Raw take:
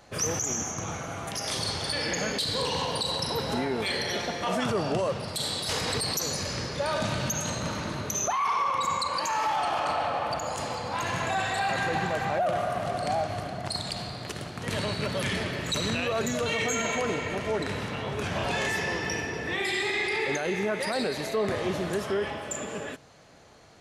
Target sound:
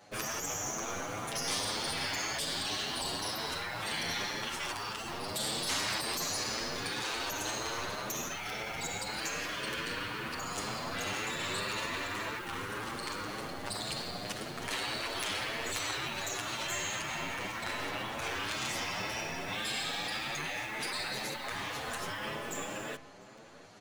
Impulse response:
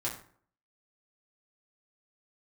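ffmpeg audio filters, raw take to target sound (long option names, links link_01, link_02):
-filter_complex "[0:a]highpass=120,asplit=2[link_01][link_02];[link_02]acrusher=bits=4:dc=4:mix=0:aa=0.000001,volume=-5.5dB[link_03];[link_01][link_03]amix=inputs=2:normalize=0,afftfilt=real='re*lt(hypot(re,im),0.1)':imag='im*lt(hypot(re,im),0.1)':win_size=1024:overlap=0.75,asplit=2[link_04][link_05];[link_05]adelay=699.7,volume=-16dB,highshelf=frequency=4000:gain=-15.7[link_06];[link_04][link_06]amix=inputs=2:normalize=0,areverse,acompressor=mode=upward:threshold=-46dB:ratio=2.5,areverse,asplit=2[link_07][link_08];[link_08]adelay=8,afreqshift=1.9[link_09];[link_07][link_09]amix=inputs=2:normalize=1"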